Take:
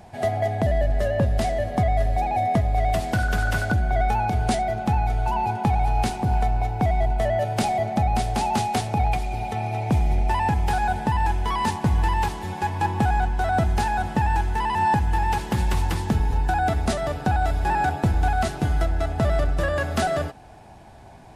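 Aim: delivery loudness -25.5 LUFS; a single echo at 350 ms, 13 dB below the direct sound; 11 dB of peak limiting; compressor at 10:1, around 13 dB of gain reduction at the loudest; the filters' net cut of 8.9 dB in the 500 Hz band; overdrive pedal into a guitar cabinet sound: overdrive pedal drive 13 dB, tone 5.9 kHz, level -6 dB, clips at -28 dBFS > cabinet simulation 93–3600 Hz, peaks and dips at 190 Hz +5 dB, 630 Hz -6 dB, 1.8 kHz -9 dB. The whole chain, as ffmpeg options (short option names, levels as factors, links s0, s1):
-filter_complex "[0:a]equalizer=f=500:t=o:g=-7.5,acompressor=threshold=0.0282:ratio=10,alimiter=level_in=2:limit=0.0631:level=0:latency=1,volume=0.501,aecho=1:1:350:0.224,asplit=2[s0][s1];[s1]highpass=f=720:p=1,volume=4.47,asoftclip=type=tanh:threshold=0.0398[s2];[s0][s2]amix=inputs=2:normalize=0,lowpass=f=5900:p=1,volume=0.501,highpass=93,equalizer=f=190:t=q:w=4:g=5,equalizer=f=630:t=q:w=4:g=-6,equalizer=f=1800:t=q:w=4:g=-9,lowpass=f=3600:w=0.5412,lowpass=f=3600:w=1.3066,volume=5.01"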